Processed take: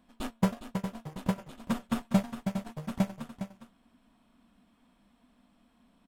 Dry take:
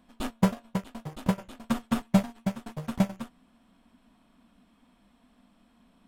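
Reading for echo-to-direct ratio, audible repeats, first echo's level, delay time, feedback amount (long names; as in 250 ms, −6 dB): −10.0 dB, 1, −10.0 dB, 409 ms, repeats not evenly spaced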